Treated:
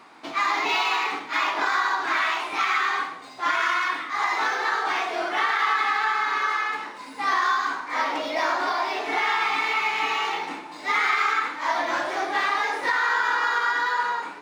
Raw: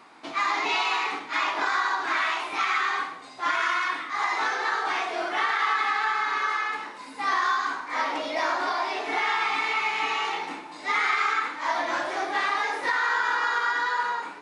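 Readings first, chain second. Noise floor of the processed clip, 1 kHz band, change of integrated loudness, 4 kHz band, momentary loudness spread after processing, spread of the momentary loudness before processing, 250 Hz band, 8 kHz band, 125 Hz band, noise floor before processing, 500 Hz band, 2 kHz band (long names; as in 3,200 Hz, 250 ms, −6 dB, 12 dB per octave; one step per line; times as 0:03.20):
−40 dBFS, +2.0 dB, +2.0 dB, +2.0 dB, 5 LU, 5 LU, +2.0 dB, +1.5 dB, can't be measured, −42 dBFS, +2.0 dB, +2.0 dB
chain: running median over 3 samples
level +2 dB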